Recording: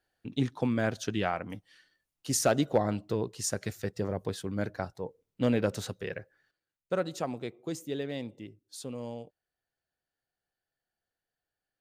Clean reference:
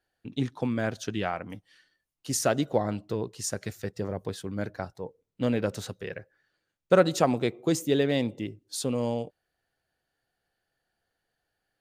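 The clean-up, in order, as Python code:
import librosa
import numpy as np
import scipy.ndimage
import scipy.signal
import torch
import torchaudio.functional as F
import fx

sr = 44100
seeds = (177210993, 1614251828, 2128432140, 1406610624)

y = fx.fix_declip(x, sr, threshold_db=-14.0)
y = fx.fix_level(y, sr, at_s=6.51, step_db=10.5)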